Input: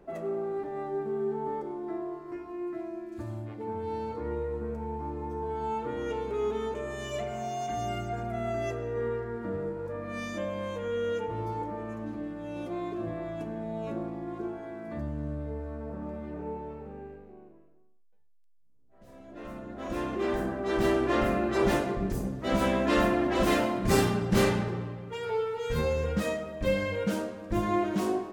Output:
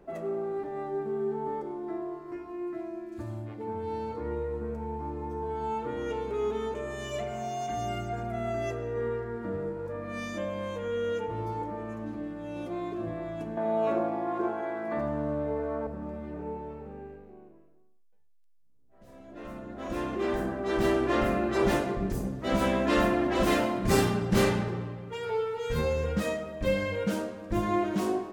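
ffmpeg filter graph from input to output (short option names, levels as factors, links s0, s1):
-filter_complex "[0:a]asettb=1/sr,asplit=3[s0][s1][s2];[s0]atrim=end=13.574[s3];[s1]atrim=start=13.57:end=15.87,asetpts=PTS-STARTPTS,afade=t=in:d=0.004:c=qsin,afade=t=out:st=2.296:d=0.004:c=qsin,highpass=f=200:p=1,equalizer=f=960:w=0.48:g=12,aecho=1:1:81:0.398,atrim=end_sample=101430[s4];[s2]atrim=start=15.866[s5];[s3][s4]acrossfade=d=0.004:c1=hsin:c2=qsin[s6];[s6][s5]acrossfade=d=0.004:c1=qsin:c2=hsin"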